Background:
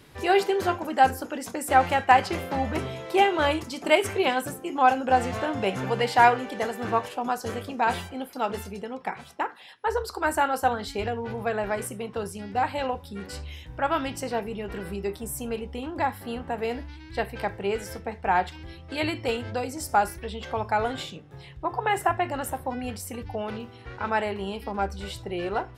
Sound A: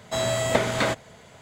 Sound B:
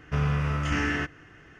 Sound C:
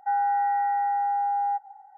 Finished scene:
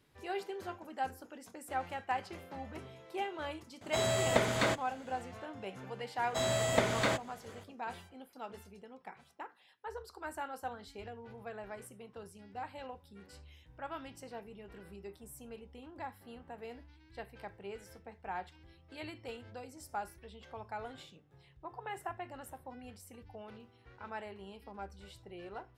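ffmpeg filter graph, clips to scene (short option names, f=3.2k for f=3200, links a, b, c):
-filter_complex "[1:a]asplit=2[a][b];[0:a]volume=-17.5dB[c];[a]atrim=end=1.41,asetpts=PTS-STARTPTS,volume=-6.5dB,afade=t=in:d=0.004:c=hsin,afade=t=out:st=1.406:d=0.004:c=hsin,adelay=168021S[d];[b]atrim=end=1.41,asetpts=PTS-STARTPTS,volume=-7dB,afade=t=in:d=0.004:c=hsin,afade=t=out:st=1.406:d=0.004:c=hsin,adelay=6230[e];[c][d][e]amix=inputs=3:normalize=0"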